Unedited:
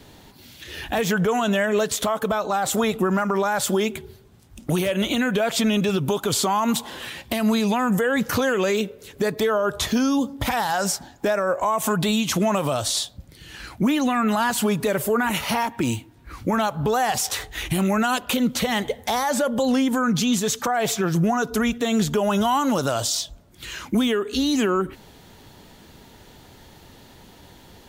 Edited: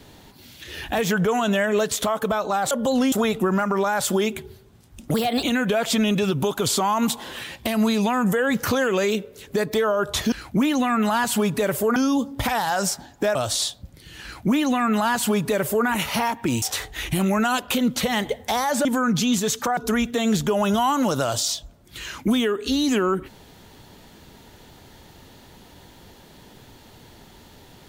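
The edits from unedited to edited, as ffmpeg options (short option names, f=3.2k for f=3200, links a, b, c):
-filter_complex "[0:a]asplit=11[a][b][c][d][e][f][g][h][i][j][k];[a]atrim=end=2.712[l];[b]atrim=start=19.438:end=19.852[m];[c]atrim=start=2.708:end=4.734[n];[d]atrim=start=4.73:end=5.09,asetpts=PTS-STARTPTS,asetrate=54684,aresample=44100,atrim=end_sample=12803,asetpts=PTS-STARTPTS[o];[e]atrim=start=5.086:end=9.982[p];[f]atrim=start=13.578:end=15.222[q];[g]atrim=start=9.978:end=11.372[r];[h]atrim=start=12.698:end=15.972[s];[i]atrim=start=17.208:end=19.442[t];[j]atrim=start=19.848:end=20.772[u];[k]atrim=start=21.438[v];[l][m]acrossfade=d=0.004:c1=hsin:c2=hsin[w];[w][n]acrossfade=d=0.004:c1=hsin:c2=hsin[x];[x][o]acrossfade=d=0.004:c1=hsin:c2=hsin[y];[y][p]acrossfade=d=0.004:c1=hsin:c2=hsin[z];[z][q]acrossfade=d=0.004:c1=hsin:c2=hsin[aa];[aa][r]acrossfade=d=0.004:c1=hsin:c2=hsin[ab];[ab][s]acrossfade=d=0.004:c1=hsin:c2=hsin[ac];[ac][t]acrossfade=d=0.004:c1=hsin:c2=hsin[ad];[ad][u]acrossfade=d=0.004:c1=hsin:c2=hsin[ae];[ae][v]acrossfade=d=0.004:c1=hsin:c2=hsin"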